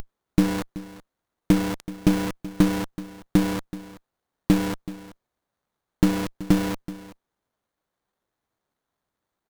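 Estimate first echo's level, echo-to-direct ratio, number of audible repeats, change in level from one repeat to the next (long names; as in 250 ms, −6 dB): −16.5 dB, −16.5 dB, 1, repeats not evenly spaced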